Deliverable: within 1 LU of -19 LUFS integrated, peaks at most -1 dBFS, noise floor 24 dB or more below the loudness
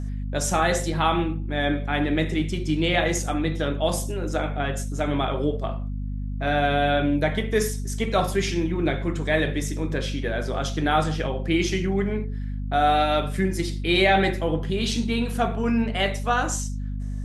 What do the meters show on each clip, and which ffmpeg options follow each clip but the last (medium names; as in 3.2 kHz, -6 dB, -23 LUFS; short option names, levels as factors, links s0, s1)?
hum 50 Hz; highest harmonic 250 Hz; hum level -27 dBFS; loudness -24.5 LUFS; peak level -7.0 dBFS; loudness target -19.0 LUFS
-> -af "bandreject=f=50:t=h:w=6,bandreject=f=100:t=h:w=6,bandreject=f=150:t=h:w=6,bandreject=f=200:t=h:w=6,bandreject=f=250:t=h:w=6"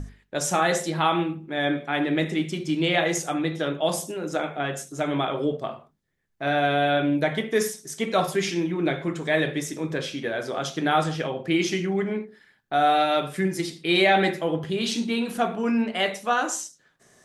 hum not found; loudness -25.0 LUFS; peak level -8.0 dBFS; loudness target -19.0 LUFS
-> -af "volume=2"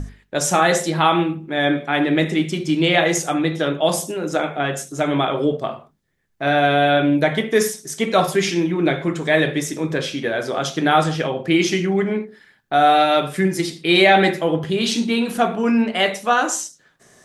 loudness -19.0 LUFS; peak level -2.0 dBFS; noise floor -58 dBFS